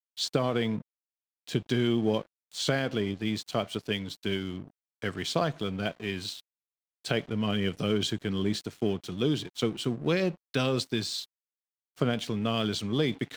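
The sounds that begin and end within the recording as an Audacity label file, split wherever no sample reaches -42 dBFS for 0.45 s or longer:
1.470000	6.400000	sound
7.050000	11.240000	sound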